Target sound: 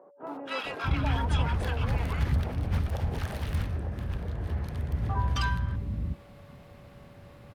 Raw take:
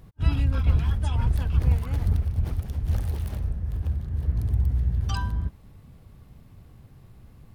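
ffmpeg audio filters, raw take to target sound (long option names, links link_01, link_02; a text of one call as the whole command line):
ffmpeg -i in.wav -filter_complex "[0:a]asplit=2[link_01][link_02];[link_02]highpass=frequency=720:poles=1,volume=24dB,asoftclip=type=tanh:threshold=-9.5dB[link_03];[link_01][link_03]amix=inputs=2:normalize=0,lowpass=frequency=1700:poles=1,volume=-6dB,aeval=exprs='val(0)+0.00355*sin(2*PI*570*n/s)':channel_layout=same,acrossover=split=330|1000[link_04][link_05][link_06];[link_06]adelay=270[link_07];[link_04]adelay=650[link_08];[link_08][link_05][link_07]amix=inputs=3:normalize=0,volume=-4.5dB" out.wav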